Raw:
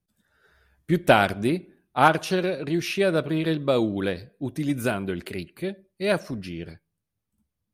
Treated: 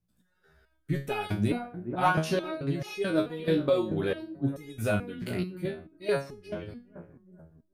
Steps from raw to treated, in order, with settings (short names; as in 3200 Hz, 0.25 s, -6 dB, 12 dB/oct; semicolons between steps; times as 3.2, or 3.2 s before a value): low shelf 390 Hz +7 dB; on a send: analogue delay 0.418 s, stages 4096, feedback 39%, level -14 dB; on the sum: stepped resonator 4.6 Hz 60–420 Hz; gain +4 dB